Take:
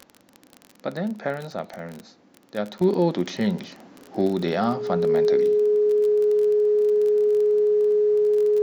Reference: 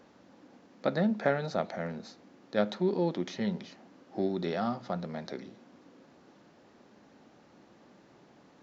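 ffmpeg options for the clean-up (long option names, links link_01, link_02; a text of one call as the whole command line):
ffmpeg -i in.wav -af "adeclick=threshold=4,bandreject=frequency=420:width=30,asetnsamples=nb_out_samples=441:pad=0,asendcmd='2.81 volume volume -8.5dB',volume=0dB" out.wav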